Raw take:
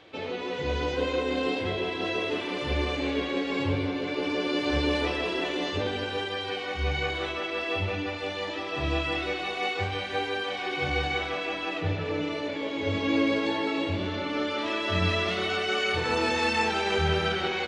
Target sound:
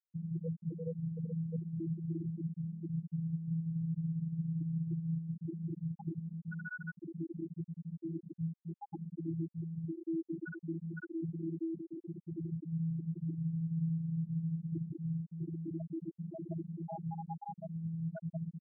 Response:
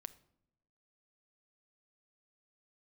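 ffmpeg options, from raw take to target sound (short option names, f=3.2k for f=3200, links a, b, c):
-af "asetrate=22050,aresample=44100,atempo=2,equalizer=f=1.9k:t=o:w=0.3:g=-5.5,afftfilt=real='hypot(re,im)*cos(PI*b)':imag='0':win_size=1024:overlap=0.75,highpass=110,aemphasis=mode=reproduction:type=75fm,aecho=1:1:967|1934|2901:0.141|0.0452|0.0145,asetrate=41895,aresample=44100,acompressor=threshold=-39dB:ratio=10,afftfilt=real='re*gte(hypot(re,im),0.0501)':imag='im*gte(hypot(re,im),0.0501)':win_size=1024:overlap=0.75,volume=8dB"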